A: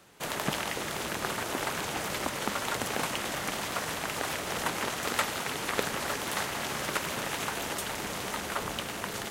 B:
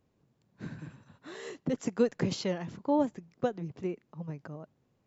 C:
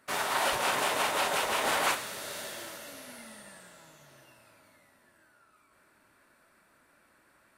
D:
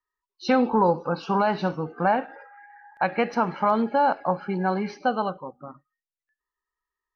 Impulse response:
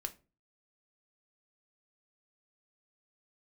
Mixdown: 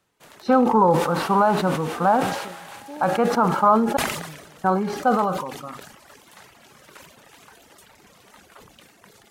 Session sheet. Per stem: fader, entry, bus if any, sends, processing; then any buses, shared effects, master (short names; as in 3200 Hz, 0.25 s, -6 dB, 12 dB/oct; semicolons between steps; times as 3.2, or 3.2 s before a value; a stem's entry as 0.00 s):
-12.0 dB, 0.00 s, no send, reverb removal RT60 1.8 s
-11.5 dB, 0.00 s, no send, dry
-13.5 dB, 0.85 s, no send, dry
+2.5 dB, 0.00 s, muted 3.97–4.64, no send, resonant high shelf 1600 Hz -6.5 dB, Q 3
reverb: off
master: harmonic-percussive split percussive -3 dB; sustainer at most 52 dB/s